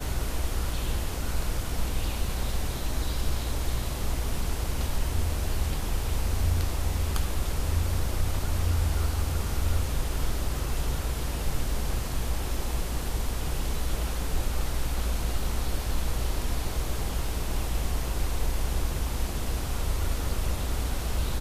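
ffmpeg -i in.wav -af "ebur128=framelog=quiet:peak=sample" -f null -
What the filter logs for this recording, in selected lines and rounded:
Integrated loudness:
  I:         -31.0 LUFS
  Threshold: -41.0 LUFS
Loudness range:
  LRA:         2.6 LU
  Threshold: -50.9 LUFS
  LRA low:   -31.9 LUFS
  LRA high:  -29.2 LUFS
Sample peak:
  Peak:      -13.5 dBFS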